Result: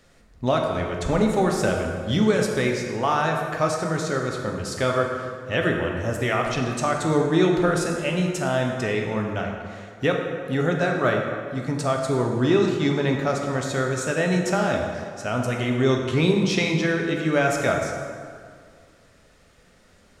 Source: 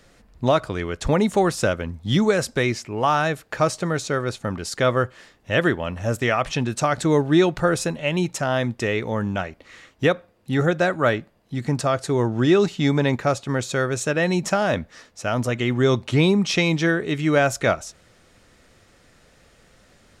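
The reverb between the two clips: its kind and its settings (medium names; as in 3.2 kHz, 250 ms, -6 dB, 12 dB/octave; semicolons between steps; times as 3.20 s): plate-style reverb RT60 2.1 s, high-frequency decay 0.6×, DRR 1 dB; trim -4 dB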